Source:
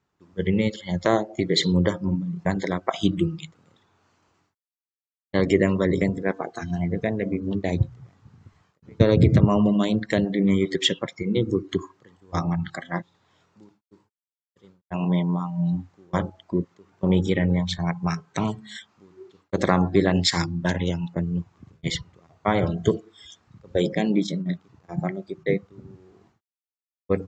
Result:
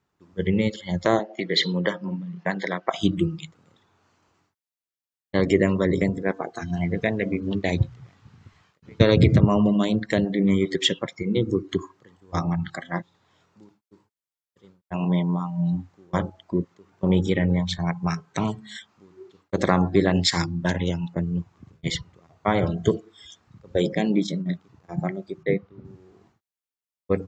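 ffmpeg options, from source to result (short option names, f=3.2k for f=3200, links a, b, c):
-filter_complex "[0:a]asettb=1/sr,asplit=3[a][b][c];[a]atrim=end=1.194[d];[b]atrim=start=1.19:end=2.88,asetpts=PTS-STARTPTS,afade=t=in:d=0.004:c=qsin,afade=t=out:st=1.686:d=0.004:c=qsin,highpass=f=190:w=0.5412,highpass=f=190:w=1.3066,equalizer=f=270:t=q:w=4:g=-8,equalizer=f=380:t=q:w=4:g=-4,equalizer=f=1.8k:t=q:w=4:g=6,equalizer=f=2.9k:t=q:w=4:g=6,lowpass=f=5.8k:w=0.5412,lowpass=f=5.8k:w=1.3066[e];[c]atrim=start=2.876[f];[d][e]acrossfade=d=0.004:c1=hsin:c2=qsin[g];[g][f]acrossfade=d=0.004:c1=qsin:c2=hsin,asettb=1/sr,asplit=3[h][i][j];[h]atrim=end=6.774[k];[i]atrim=start=6.77:end=9.33,asetpts=PTS-STARTPTS,afade=t=in:d=0.004:c=qsin,afade=t=out:st=2.556:d=0.004:c=qsin,equalizer=f=3k:w=0.53:g=7.5[l];[j]atrim=start=9.326[m];[k][l]acrossfade=d=0.004:c1=hsin:c2=qsin[n];[n][m]acrossfade=d=0.004:c1=qsin:c2=hsin,asettb=1/sr,asplit=3[o][p][q];[o]atrim=end=25.434[r];[p]atrim=start=25.43:end=25.85,asetpts=PTS-STARTPTS,afade=t=in:d=0.004:c=qsin,afade=t=out:st=0.416:d=0.004:c=qsin,lowpass=3.6k[s];[q]atrim=start=25.846[t];[r][s]acrossfade=d=0.004:c1=hsin:c2=qsin[u];[u][t]acrossfade=d=0.004:c1=qsin:c2=hsin"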